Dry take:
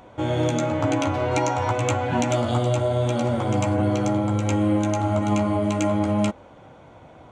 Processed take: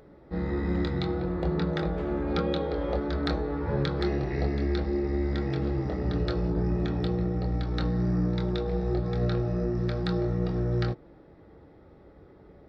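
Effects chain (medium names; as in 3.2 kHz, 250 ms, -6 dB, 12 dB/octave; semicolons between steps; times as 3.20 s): speed mistake 78 rpm record played at 45 rpm; trim -5.5 dB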